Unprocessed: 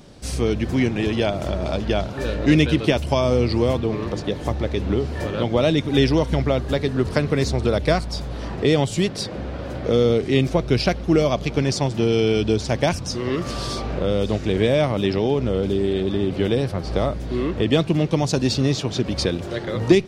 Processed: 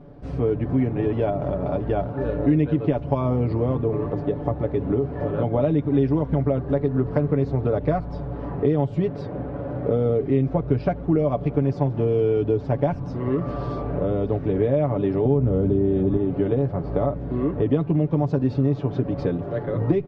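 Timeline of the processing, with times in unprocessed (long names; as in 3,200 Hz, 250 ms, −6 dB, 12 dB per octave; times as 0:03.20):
0:15.25–0:16.17: low-shelf EQ 230 Hz +10.5 dB
whole clip: low-pass filter 1,000 Hz 12 dB per octave; comb filter 7 ms, depth 63%; downward compressor 2.5 to 1, threshold −18 dBFS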